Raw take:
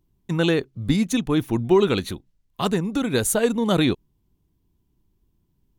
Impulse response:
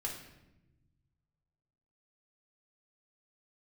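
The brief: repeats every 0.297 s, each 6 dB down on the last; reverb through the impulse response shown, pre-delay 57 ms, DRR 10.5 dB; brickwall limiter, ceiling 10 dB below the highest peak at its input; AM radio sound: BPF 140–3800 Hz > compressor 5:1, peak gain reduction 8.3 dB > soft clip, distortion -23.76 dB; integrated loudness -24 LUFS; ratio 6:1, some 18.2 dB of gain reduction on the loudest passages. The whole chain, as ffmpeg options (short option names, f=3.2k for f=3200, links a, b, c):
-filter_complex "[0:a]acompressor=threshold=-33dB:ratio=6,alimiter=level_in=5.5dB:limit=-24dB:level=0:latency=1,volume=-5.5dB,aecho=1:1:297|594|891|1188|1485|1782:0.501|0.251|0.125|0.0626|0.0313|0.0157,asplit=2[a][b];[1:a]atrim=start_sample=2205,adelay=57[c];[b][c]afir=irnorm=-1:irlink=0,volume=-11.5dB[d];[a][d]amix=inputs=2:normalize=0,highpass=140,lowpass=3.8k,acompressor=threshold=-41dB:ratio=5,asoftclip=threshold=-34.5dB,volume=22dB"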